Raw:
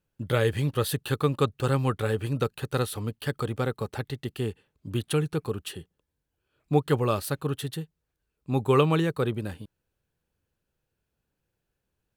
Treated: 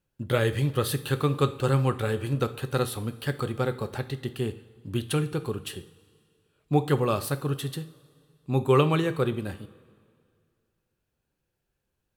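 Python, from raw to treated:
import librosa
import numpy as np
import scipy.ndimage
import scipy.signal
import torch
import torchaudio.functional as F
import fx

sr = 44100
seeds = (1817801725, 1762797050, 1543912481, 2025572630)

y = fx.vibrato(x, sr, rate_hz=5.6, depth_cents=6.6)
y = fx.rev_double_slope(y, sr, seeds[0], early_s=0.41, late_s=2.2, knee_db=-17, drr_db=9.0)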